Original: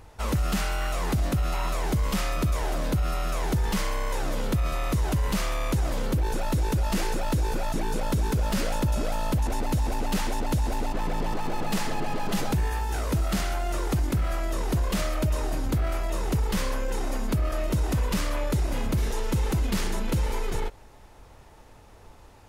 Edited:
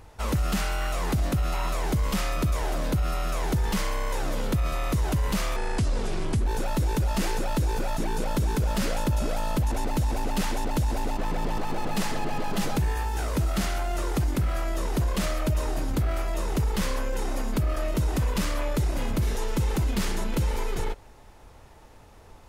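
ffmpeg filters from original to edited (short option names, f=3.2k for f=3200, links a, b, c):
-filter_complex "[0:a]asplit=3[a][b][c];[a]atrim=end=5.564[d];[b]atrim=start=5.56:end=6.22,asetpts=PTS-STARTPTS,asetrate=32193,aresample=44100,atrim=end_sample=39871,asetpts=PTS-STARTPTS[e];[c]atrim=start=6.216[f];[d][e]acrossfade=d=0.004:c1=hsin:c2=hsin[g];[g][f]acrossfade=d=0.004:c1=hsin:c2=hsin"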